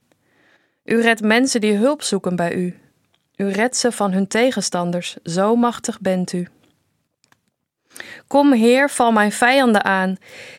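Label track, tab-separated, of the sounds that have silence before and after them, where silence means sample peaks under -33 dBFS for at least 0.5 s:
0.880000	2.720000	sound
3.400000	6.450000	sound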